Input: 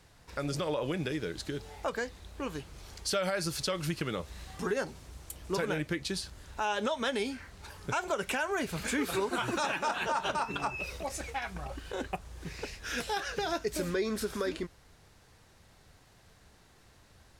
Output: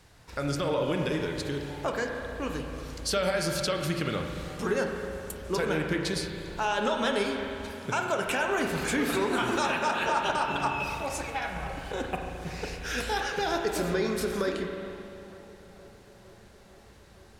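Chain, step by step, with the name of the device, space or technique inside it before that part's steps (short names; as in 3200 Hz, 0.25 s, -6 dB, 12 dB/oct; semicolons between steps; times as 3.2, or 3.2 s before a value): dub delay into a spring reverb (darkening echo 0.46 s, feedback 82%, low-pass 2500 Hz, level -23.5 dB; spring tank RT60 2.6 s, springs 35/44 ms, chirp 25 ms, DRR 2.5 dB); 7.72–8.26 HPF 100 Hz; gain +2.5 dB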